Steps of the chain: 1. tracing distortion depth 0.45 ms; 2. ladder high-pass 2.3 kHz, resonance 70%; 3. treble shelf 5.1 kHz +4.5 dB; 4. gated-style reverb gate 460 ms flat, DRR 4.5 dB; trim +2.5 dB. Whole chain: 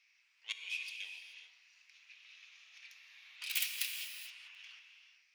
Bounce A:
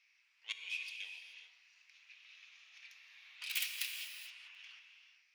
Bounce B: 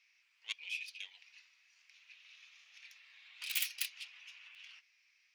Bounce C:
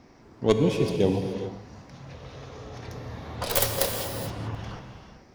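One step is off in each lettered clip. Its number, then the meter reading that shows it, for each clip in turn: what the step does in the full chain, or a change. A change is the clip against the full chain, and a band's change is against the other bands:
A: 3, 8 kHz band -2.5 dB; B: 4, momentary loudness spread change +1 LU; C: 2, 1 kHz band +25.0 dB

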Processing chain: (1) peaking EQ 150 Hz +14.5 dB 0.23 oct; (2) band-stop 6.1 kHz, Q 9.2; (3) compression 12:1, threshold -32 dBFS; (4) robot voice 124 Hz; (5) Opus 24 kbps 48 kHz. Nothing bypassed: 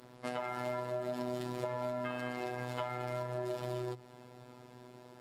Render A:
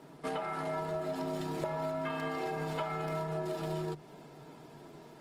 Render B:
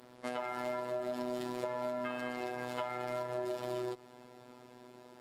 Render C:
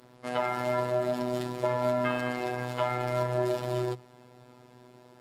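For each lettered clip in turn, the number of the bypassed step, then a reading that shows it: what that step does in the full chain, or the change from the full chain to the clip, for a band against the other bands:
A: 4, crest factor change -3.5 dB; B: 1, 125 Hz band -9.0 dB; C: 3, mean gain reduction 5.5 dB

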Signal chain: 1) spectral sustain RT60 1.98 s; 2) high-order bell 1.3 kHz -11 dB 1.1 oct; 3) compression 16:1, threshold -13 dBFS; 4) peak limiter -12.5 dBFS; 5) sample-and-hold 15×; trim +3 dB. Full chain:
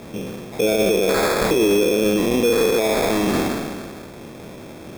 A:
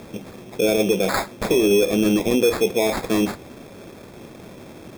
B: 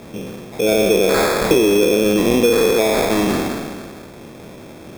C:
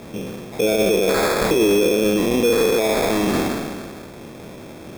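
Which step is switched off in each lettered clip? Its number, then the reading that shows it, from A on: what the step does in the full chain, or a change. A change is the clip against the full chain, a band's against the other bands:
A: 1, momentary loudness spread change -4 LU; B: 4, mean gain reduction 1.5 dB; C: 3, mean gain reduction 1.5 dB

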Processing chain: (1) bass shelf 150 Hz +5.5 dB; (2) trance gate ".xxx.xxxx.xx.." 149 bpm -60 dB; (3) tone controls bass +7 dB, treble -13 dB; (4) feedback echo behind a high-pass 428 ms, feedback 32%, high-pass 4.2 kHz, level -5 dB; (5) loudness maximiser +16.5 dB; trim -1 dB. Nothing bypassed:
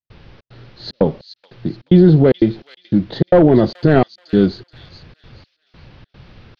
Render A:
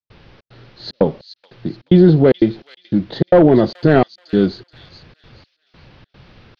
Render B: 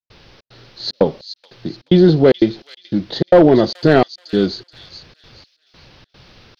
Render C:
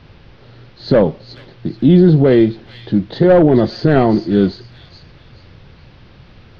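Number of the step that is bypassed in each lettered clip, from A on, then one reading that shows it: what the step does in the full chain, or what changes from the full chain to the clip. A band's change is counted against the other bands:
1, 125 Hz band -2.0 dB; 3, 125 Hz band -6.0 dB; 2, crest factor change -1.5 dB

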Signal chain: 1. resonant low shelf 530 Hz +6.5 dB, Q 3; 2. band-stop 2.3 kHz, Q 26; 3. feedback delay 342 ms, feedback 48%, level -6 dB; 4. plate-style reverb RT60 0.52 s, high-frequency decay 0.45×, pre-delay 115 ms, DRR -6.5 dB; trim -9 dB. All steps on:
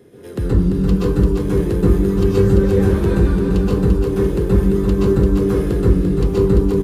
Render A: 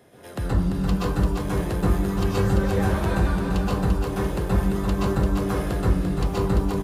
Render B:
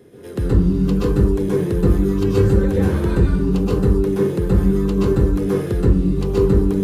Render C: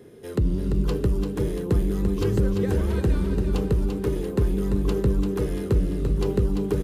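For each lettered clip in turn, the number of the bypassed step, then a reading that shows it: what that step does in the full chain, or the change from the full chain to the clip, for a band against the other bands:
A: 1, 500 Hz band -10.5 dB; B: 3, loudness change -1.5 LU; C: 4, echo-to-direct 8.0 dB to -5.0 dB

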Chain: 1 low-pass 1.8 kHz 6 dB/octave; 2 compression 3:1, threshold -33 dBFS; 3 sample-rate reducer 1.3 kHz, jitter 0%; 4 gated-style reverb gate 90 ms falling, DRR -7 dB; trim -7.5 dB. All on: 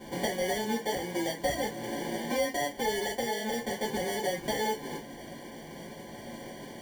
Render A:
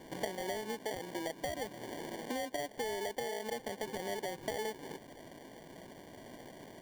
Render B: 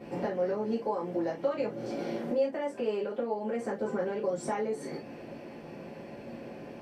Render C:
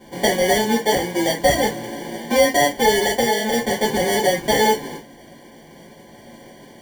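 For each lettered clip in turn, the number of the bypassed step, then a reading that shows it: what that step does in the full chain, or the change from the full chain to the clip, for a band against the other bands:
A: 4, crest factor change -1.5 dB; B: 3, crest factor change -1.5 dB; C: 2, mean gain reduction 8.0 dB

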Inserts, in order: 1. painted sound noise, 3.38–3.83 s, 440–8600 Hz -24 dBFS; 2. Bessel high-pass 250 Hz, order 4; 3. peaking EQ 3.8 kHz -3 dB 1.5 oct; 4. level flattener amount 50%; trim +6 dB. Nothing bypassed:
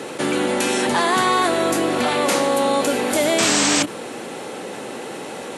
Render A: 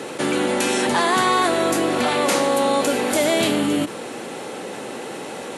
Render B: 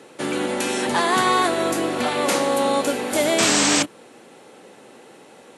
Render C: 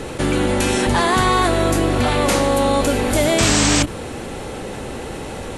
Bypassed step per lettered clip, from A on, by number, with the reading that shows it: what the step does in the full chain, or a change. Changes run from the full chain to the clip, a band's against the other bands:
1, 8 kHz band -4.0 dB; 4, crest factor change +1.5 dB; 2, 125 Hz band +12.5 dB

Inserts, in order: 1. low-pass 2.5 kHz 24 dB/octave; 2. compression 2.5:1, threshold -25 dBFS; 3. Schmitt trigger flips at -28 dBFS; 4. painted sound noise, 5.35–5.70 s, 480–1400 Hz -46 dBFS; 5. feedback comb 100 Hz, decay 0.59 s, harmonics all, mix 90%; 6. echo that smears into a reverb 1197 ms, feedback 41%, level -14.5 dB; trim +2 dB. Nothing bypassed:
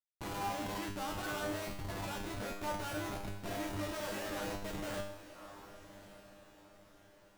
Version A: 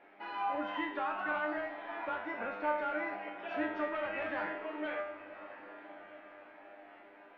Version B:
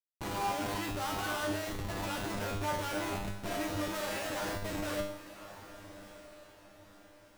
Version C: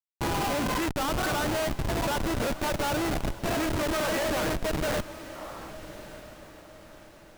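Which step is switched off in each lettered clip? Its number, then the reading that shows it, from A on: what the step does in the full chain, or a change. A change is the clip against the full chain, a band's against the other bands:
3, crest factor change +4.5 dB; 2, mean gain reduction 1.5 dB; 5, crest factor change -3.5 dB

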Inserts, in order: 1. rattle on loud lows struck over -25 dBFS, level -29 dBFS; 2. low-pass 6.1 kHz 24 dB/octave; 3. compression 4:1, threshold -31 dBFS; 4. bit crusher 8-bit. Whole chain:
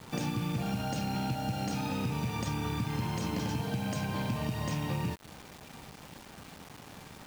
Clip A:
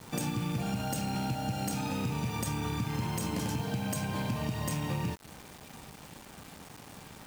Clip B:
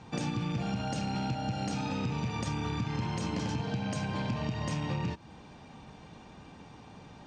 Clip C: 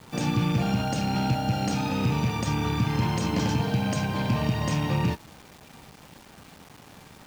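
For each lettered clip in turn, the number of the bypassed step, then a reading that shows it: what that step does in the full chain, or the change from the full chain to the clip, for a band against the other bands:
2, 8 kHz band +5.0 dB; 4, distortion -19 dB; 3, mean gain reduction 5.0 dB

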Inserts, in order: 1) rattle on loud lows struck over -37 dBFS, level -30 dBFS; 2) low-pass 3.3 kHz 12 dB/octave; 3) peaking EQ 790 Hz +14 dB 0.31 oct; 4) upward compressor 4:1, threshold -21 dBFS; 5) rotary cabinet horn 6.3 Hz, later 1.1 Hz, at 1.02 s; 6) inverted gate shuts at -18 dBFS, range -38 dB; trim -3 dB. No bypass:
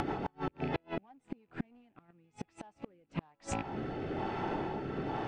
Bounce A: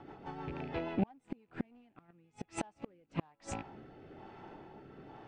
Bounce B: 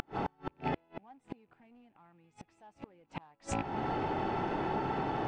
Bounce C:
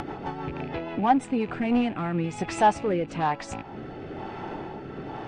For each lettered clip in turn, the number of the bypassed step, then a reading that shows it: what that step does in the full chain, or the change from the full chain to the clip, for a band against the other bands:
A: 4, crest factor change +5.5 dB; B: 5, 1 kHz band +4.0 dB; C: 6, momentary loudness spread change +2 LU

